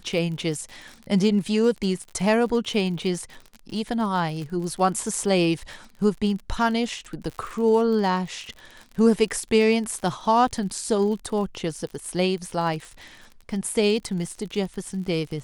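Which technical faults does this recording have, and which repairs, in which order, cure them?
crackle 46/s -32 dBFS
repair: de-click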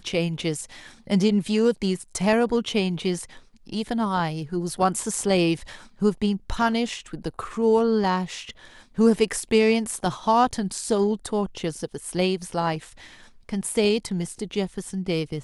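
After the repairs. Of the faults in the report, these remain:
none

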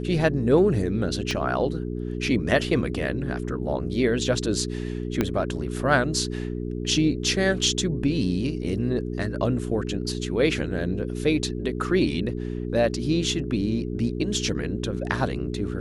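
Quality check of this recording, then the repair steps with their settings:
hum 60 Hz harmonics 7 -30 dBFS
1.31 pop -15 dBFS
5.21 pop -9 dBFS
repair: de-click; de-hum 60 Hz, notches 7

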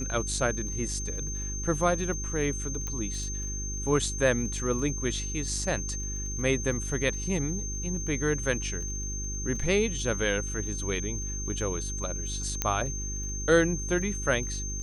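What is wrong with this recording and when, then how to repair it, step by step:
crackle 20/s -38 dBFS
hum 50 Hz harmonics 8 -35 dBFS
tone 6300 Hz -35 dBFS
2.87 pop -20 dBFS
12.62 pop -10 dBFS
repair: de-click; de-hum 50 Hz, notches 8; notch 6300 Hz, Q 30

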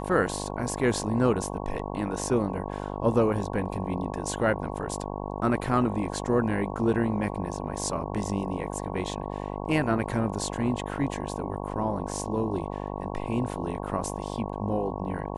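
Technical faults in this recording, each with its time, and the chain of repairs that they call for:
buzz 50 Hz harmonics 22 -34 dBFS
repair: de-hum 50 Hz, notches 22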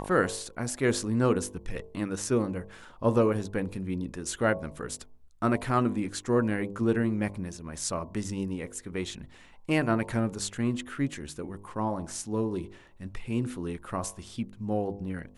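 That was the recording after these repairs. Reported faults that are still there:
none

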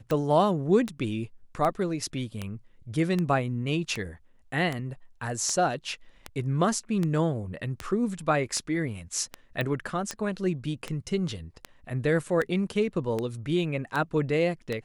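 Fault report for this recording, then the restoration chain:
tick 78 rpm -16 dBFS
9.61 pop -18 dBFS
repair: de-click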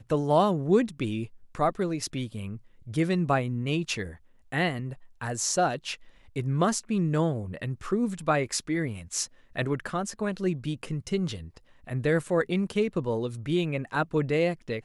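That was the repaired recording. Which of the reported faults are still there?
none

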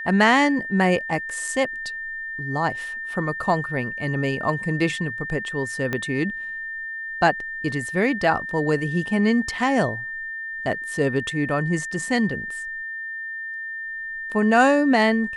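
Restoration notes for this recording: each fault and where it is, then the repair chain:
tone 1800 Hz -29 dBFS
5.93 pop -12 dBFS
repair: de-click; notch 1800 Hz, Q 30

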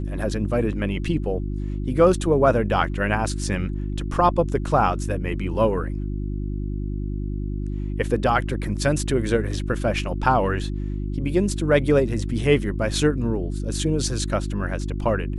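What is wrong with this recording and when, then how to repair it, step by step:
hum 50 Hz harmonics 7 -27 dBFS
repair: de-hum 50 Hz, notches 7

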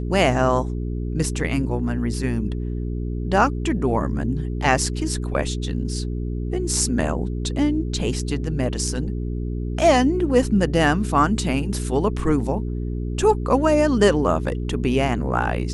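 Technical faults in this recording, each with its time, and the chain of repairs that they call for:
hum 60 Hz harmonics 7 -26 dBFS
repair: de-hum 60 Hz, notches 7

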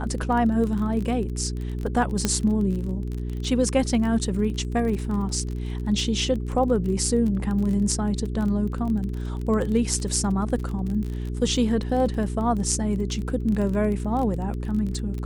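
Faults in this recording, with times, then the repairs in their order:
crackle 26/s -29 dBFS
hum 60 Hz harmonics 7 -29 dBFS
2.25 pop -7 dBFS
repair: de-click; de-hum 60 Hz, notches 7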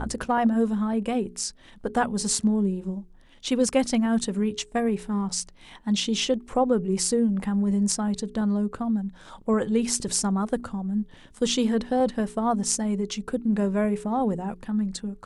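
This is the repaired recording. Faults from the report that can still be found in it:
none

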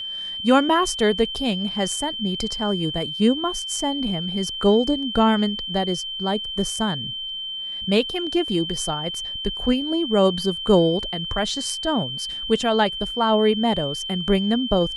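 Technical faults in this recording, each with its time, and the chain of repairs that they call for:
tone 3100 Hz -28 dBFS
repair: notch 3100 Hz, Q 30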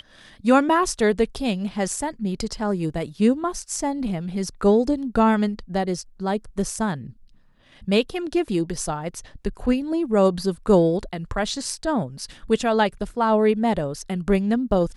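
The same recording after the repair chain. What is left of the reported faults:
none

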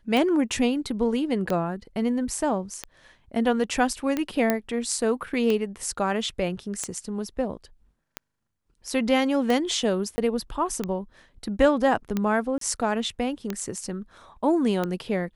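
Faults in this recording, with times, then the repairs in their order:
tick 45 rpm -13 dBFS
4.5 pop -8 dBFS
10.16–10.18 gap 20 ms
12.58–12.61 gap 33 ms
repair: de-click; interpolate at 10.16, 20 ms; interpolate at 12.58, 33 ms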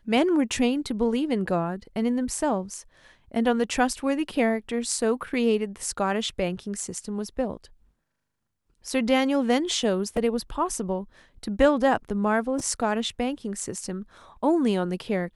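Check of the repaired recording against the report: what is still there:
none

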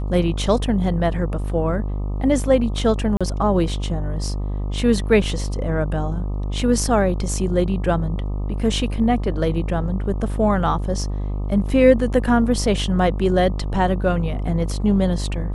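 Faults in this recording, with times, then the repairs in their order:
buzz 50 Hz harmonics 25 -24 dBFS
3.17–3.21 gap 36 ms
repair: de-hum 50 Hz, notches 25; interpolate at 3.17, 36 ms

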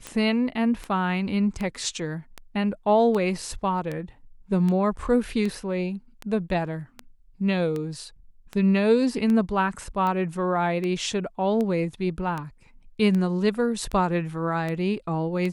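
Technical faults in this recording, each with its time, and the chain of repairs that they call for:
tick 78 rpm -18 dBFS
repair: de-click

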